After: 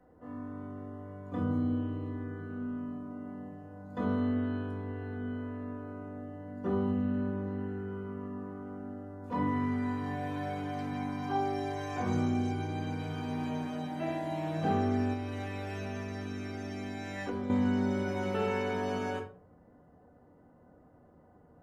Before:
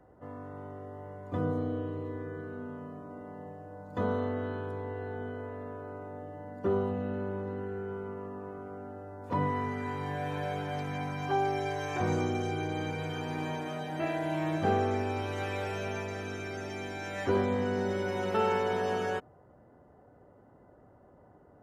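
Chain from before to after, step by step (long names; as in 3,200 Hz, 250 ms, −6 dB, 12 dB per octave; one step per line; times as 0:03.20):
rectangular room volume 250 cubic metres, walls furnished, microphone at 1.9 metres
0:15.13–0:17.50: downward compressor 6 to 1, threshold −27 dBFS, peak gain reduction 8.5 dB
level −6 dB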